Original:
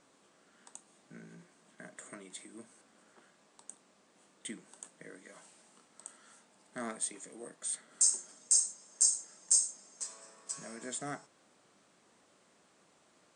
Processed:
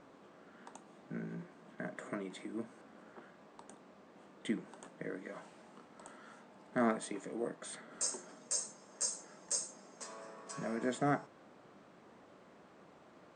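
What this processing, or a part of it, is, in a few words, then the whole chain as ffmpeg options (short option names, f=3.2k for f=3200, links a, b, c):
through cloth: -af "lowpass=6.8k,highshelf=f=2.8k:g=-18,volume=10dB"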